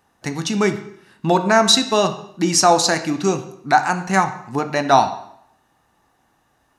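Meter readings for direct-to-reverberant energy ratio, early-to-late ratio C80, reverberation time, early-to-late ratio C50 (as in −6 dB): 8.0 dB, 14.0 dB, 0.70 s, 11.5 dB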